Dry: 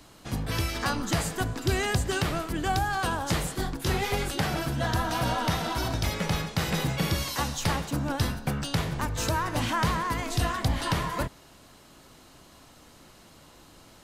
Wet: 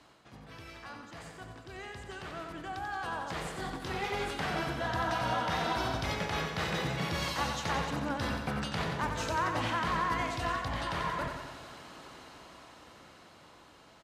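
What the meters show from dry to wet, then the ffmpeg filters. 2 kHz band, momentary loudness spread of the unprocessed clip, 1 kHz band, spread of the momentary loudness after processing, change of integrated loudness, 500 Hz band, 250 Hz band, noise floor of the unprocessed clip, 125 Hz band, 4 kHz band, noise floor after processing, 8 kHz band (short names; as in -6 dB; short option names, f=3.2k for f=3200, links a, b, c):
-3.5 dB, 3 LU, -3.0 dB, 17 LU, -5.0 dB, -4.5 dB, -7.5 dB, -54 dBFS, -10.0 dB, -6.0 dB, -57 dBFS, -11.5 dB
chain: -filter_complex "[0:a]highpass=52,areverse,acompressor=threshold=-40dB:ratio=6,areverse,aemphasis=mode=reproduction:type=75fm,dynaudnorm=f=630:g=11:m=15dB,lowshelf=f=430:g=-10.5,asplit=2[a][b];[b]aecho=0:1:90|180|270|360|450|540|630|720:0.473|0.279|0.165|0.0972|0.0573|0.0338|0.02|0.0118[c];[a][c]amix=inputs=2:normalize=0,volume=-1.5dB"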